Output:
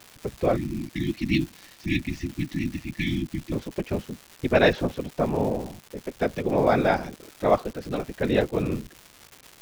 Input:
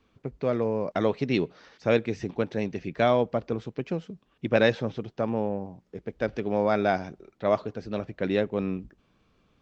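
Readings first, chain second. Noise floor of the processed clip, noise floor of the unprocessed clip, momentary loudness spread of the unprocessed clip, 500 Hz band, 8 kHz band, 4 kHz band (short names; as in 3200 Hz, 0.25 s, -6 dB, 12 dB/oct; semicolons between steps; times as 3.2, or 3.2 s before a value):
-53 dBFS, -68 dBFS, 12 LU, +0.5 dB, n/a, +3.5 dB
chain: whisperiser; spectral delete 0.56–3.52, 350–1700 Hz; crackle 400/s -37 dBFS; gain +3 dB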